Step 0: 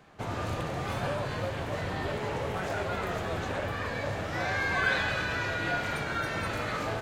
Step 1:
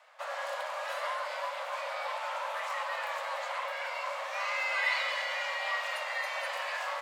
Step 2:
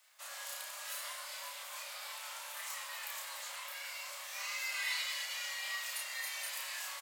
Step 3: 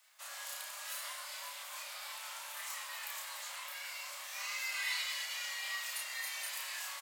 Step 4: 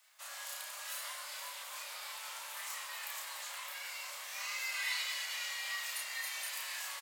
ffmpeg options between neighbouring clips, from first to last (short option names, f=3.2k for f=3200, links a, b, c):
-af "afreqshift=460,highpass=540,volume=-2.5dB"
-filter_complex "[0:a]aderivative,asplit=2[a][b];[b]adelay=32,volume=-2.5dB[c];[a][c]amix=inputs=2:normalize=0,crystalizer=i=1.5:c=0"
-af "highpass=f=560:w=0.5412,highpass=f=560:w=1.3066"
-filter_complex "[0:a]asplit=6[a][b][c][d][e][f];[b]adelay=469,afreqshift=-73,volume=-12dB[g];[c]adelay=938,afreqshift=-146,volume=-18.7dB[h];[d]adelay=1407,afreqshift=-219,volume=-25.5dB[i];[e]adelay=1876,afreqshift=-292,volume=-32.2dB[j];[f]adelay=2345,afreqshift=-365,volume=-39dB[k];[a][g][h][i][j][k]amix=inputs=6:normalize=0"